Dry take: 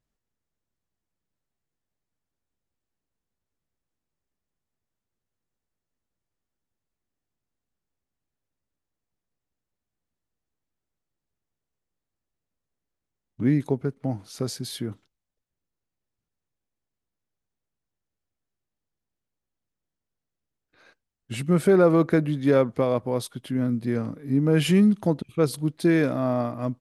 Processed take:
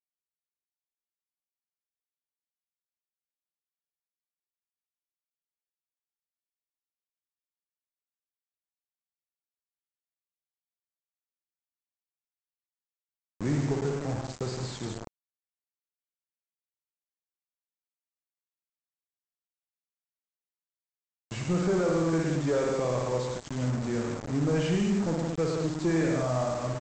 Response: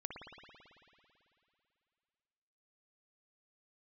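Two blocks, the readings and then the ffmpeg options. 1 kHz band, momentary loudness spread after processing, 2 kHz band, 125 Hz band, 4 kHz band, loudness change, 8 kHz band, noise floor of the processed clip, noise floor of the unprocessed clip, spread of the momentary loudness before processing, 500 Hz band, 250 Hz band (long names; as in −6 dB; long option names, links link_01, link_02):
−3.0 dB, 9 LU, −4.5 dB, −3.5 dB, −4.5 dB, −5.5 dB, −1.0 dB, below −85 dBFS, below −85 dBFS, 13 LU, −5.0 dB, −6.5 dB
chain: -filter_complex "[0:a]highpass=frequency=55:width=0.5412,highpass=frequency=55:width=1.3066,equalizer=frequency=250:width=6.8:gain=-8.5,aresample=11025,aresample=44100[link_01];[1:a]atrim=start_sample=2205,afade=type=out:start_time=0.27:duration=0.01,atrim=end_sample=12348[link_02];[link_01][link_02]afir=irnorm=-1:irlink=0,acrossover=split=1900[link_03][link_04];[link_03]alimiter=limit=-16dB:level=0:latency=1:release=199[link_05];[link_05][link_04]amix=inputs=2:normalize=0,acrossover=split=3300[link_06][link_07];[link_07]acompressor=threshold=-57dB:ratio=4:attack=1:release=60[link_08];[link_06][link_08]amix=inputs=2:normalize=0,crystalizer=i=8:c=0,aeval=exprs='0.266*(cos(1*acos(clip(val(0)/0.266,-1,1)))-cos(1*PI/2))+0.0299*(cos(5*acos(clip(val(0)/0.266,-1,1)))-cos(5*PI/2))':channel_layout=same,aresample=16000,acrusher=bits=4:mix=0:aa=0.000001,aresample=44100,equalizer=frequency=3200:width=0.61:gain=-12,volume=-3.5dB"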